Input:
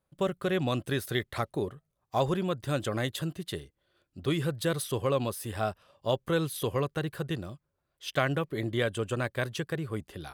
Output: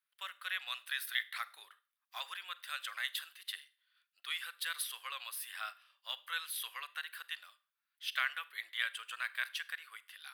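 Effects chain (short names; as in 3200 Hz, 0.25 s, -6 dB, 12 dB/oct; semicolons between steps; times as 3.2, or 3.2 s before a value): HPF 1500 Hz 24 dB/oct; bell 6900 Hz -12.5 dB 0.66 oct; reverb RT60 0.40 s, pre-delay 32 ms, DRR 17 dB; gain +1 dB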